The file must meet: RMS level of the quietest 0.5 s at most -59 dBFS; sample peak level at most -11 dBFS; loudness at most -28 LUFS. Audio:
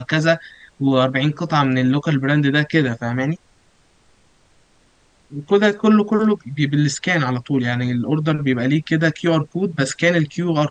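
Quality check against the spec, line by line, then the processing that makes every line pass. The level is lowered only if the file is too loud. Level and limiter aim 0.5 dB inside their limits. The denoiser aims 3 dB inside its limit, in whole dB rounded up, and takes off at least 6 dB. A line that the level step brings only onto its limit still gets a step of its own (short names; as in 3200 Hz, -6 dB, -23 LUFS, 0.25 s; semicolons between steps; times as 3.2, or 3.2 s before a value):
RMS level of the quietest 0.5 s -57 dBFS: fail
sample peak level -3.0 dBFS: fail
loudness -18.5 LUFS: fail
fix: gain -10 dB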